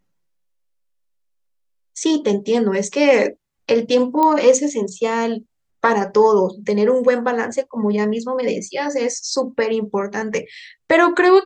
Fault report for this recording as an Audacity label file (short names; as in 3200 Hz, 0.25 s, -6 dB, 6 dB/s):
4.230000	4.230000	pop -7 dBFS